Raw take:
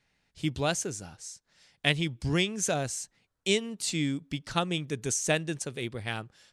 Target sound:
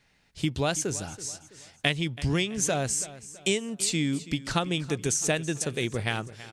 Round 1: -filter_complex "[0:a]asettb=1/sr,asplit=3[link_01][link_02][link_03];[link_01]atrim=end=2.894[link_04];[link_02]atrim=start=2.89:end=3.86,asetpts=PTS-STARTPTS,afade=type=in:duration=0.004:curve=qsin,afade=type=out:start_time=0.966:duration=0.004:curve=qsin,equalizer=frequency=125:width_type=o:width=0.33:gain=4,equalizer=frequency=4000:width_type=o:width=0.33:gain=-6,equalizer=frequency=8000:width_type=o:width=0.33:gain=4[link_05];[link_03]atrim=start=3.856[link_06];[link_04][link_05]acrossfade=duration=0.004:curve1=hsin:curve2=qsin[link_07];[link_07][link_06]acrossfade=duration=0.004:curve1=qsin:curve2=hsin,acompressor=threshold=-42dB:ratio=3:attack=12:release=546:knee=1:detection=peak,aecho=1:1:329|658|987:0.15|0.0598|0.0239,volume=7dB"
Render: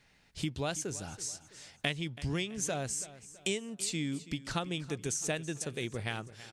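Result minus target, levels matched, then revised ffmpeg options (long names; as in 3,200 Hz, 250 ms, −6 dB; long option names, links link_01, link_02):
downward compressor: peak gain reduction +7.5 dB
-filter_complex "[0:a]asettb=1/sr,asplit=3[link_01][link_02][link_03];[link_01]atrim=end=2.894[link_04];[link_02]atrim=start=2.89:end=3.86,asetpts=PTS-STARTPTS,afade=type=in:duration=0.004:curve=qsin,afade=type=out:start_time=0.966:duration=0.004:curve=qsin,equalizer=frequency=125:width_type=o:width=0.33:gain=4,equalizer=frequency=4000:width_type=o:width=0.33:gain=-6,equalizer=frequency=8000:width_type=o:width=0.33:gain=4[link_05];[link_03]atrim=start=3.856[link_06];[link_04][link_05]acrossfade=duration=0.004:curve1=hsin:curve2=qsin[link_07];[link_07][link_06]acrossfade=duration=0.004:curve1=qsin:curve2=hsin,acompressor=threshold=-30.5dB:ratio=3:attack=12:release=546:knee=1:detection=peak,aecho=1:1:329|658|987:0.15|0.0598|0.0239,volume=7dB"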